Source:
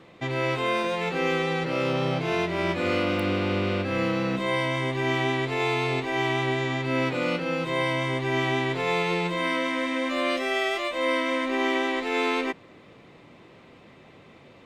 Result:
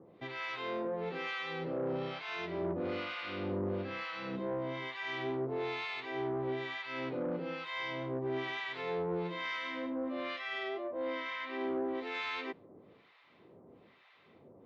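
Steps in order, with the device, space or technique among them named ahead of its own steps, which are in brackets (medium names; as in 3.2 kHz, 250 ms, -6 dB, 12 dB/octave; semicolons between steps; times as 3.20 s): 9.90–11.95 s: distance through air 110 m; guitar amplifier with harmonic tremolo (harmonic tremolo 1.1 Hz, depth 100%, crossover 920 Hz; saturation -25.5 dBFS, distortion -15 dB; cabinet simulation 76–4600 Hz, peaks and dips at 130 Hz -4 dB, 410 Hz +4 dB, 2.6 kHz -3 dB); trim -5 dB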